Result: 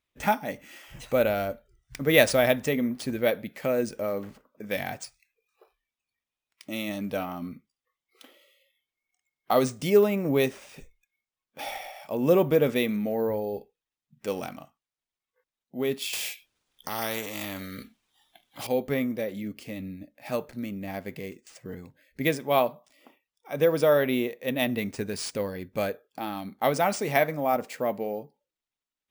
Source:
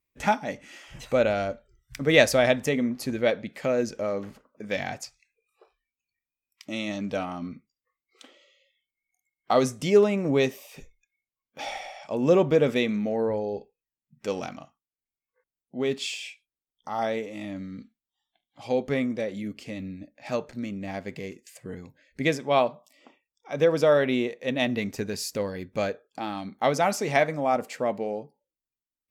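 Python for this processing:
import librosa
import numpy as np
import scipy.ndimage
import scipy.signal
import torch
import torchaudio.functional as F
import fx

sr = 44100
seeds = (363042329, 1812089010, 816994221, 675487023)

y = np.repeat(x[::3], 3)[:len(x)]
y = fx.spectral_comp(y, sr, ratio=2.0, at=(16.13, 18.67))
y = F.gain(torch.from_numpy(y), -1.0).numpy()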